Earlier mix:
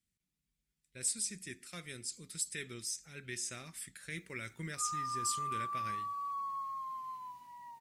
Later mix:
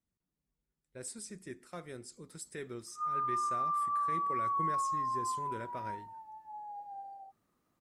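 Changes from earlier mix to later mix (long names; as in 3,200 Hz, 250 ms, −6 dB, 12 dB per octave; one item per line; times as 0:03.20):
background: entry −1.80 s
master: add drawn EQ curve 200 Hz 0 dB, 310 Hz +5 dB, 910 Hz +11 dB, 2,400 Hz −10 dB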